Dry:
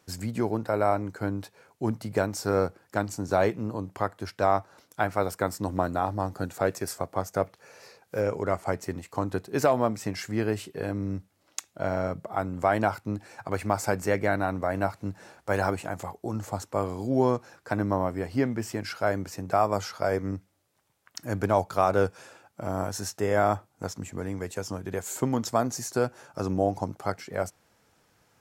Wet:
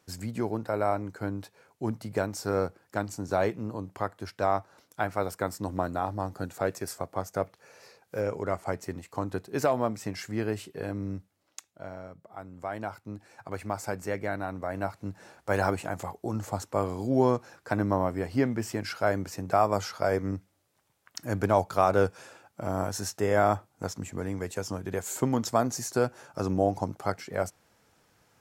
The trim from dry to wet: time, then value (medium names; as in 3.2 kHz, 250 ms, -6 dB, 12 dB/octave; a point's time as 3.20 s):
11.10 s -3 dB
12.12 s -15.5 dB
13.43 s -6.5 dB
14.50 s -6.5 dB
15.62 s 0 dB